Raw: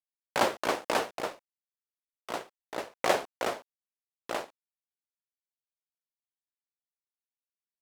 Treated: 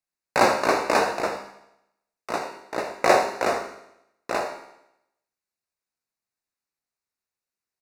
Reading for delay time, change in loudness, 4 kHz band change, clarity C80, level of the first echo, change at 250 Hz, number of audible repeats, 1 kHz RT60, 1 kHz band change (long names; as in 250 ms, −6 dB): 81 ms, +8.0 dB, +4.0 dB, 8.5 dB, −13.0 dB, +8.5 dB, 1, 0.80 s, +9.0 dB